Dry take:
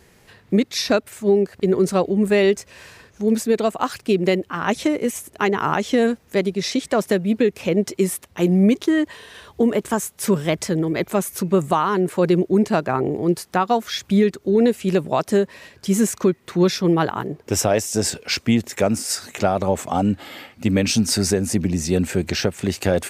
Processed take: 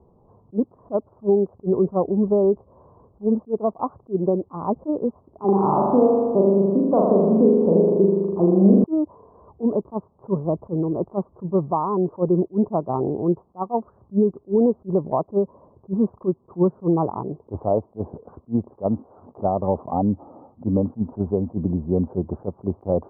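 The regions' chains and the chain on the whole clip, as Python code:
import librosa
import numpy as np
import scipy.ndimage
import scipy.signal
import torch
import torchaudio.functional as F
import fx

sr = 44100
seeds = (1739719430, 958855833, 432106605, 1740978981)

y = fx.chain(x, sr, fx.highpass(hz=93.0, slope=12),
    fx.room_flutter(wall_m=7.0, rt60_s=1.4),
    fx.band_squash(depth_pct=40), at=(5.44, 8.84))
y = scipy.signal.sosfilt(scipy.signal.butter(12, 1100.0, 'lowpass', fs=sr, output='sos'), y)
y = fx.attack_slew(y, sr, db_per_s=420.0)
y = y * librosa.db_to_amplitude(-1.5)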